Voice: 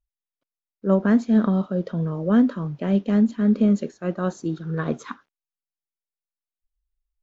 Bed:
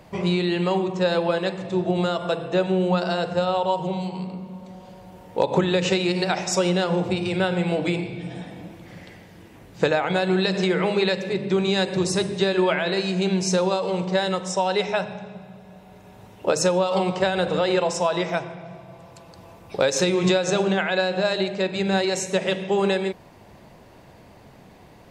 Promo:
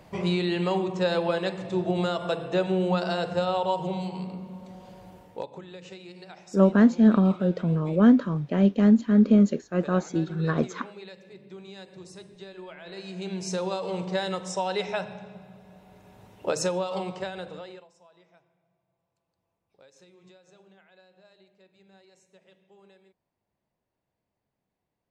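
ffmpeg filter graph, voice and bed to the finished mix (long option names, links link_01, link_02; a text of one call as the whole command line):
ffmpeg -i stem1.wav -i stem2.wav -filter_complex "[0:a]adelay=5700,volume=0.5dB[link_01];[1:a]volume=13dB,afade=type=out:start_time=5.08:duration=0.43:silence=0.112202,afade=type=in:start_time=12.76:duration=1.17:silence=0.149624,afade=type=out:start_time=16.56:duration=1.31:silence=0.0334965[link_02];[link_01][link_02]amix=inputs=2:normalize=0" out.wav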